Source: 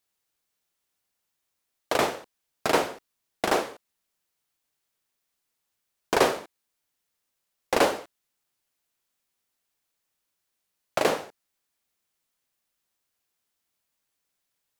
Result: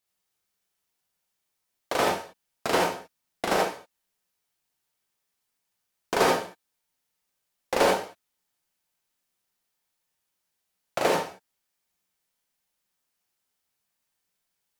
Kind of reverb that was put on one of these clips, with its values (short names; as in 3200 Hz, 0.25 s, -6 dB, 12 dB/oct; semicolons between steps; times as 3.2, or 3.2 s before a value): non-linear reverb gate 0.1 s rising, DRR -1.5 dB; gain -3.5 dB